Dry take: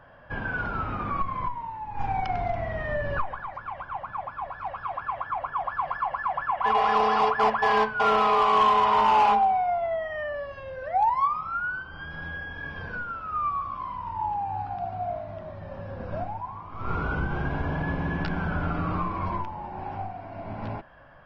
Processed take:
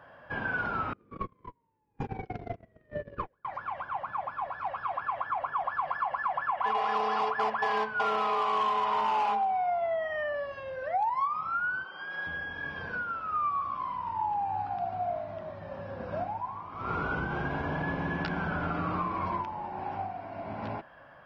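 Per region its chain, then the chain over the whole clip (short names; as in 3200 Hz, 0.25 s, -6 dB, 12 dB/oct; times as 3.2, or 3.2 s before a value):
0.93–3.45 gate -26 dBFS, range -37 dB + resonant low shelf 580 Hz +9.5 dB, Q 3
11.84–12.27 HPF 380 Hz + comb 5.4 ms, depth 52%
whole clip: HPF 200 Hz 6 dB/oct; compressor 5:1, threshold -26 dBFS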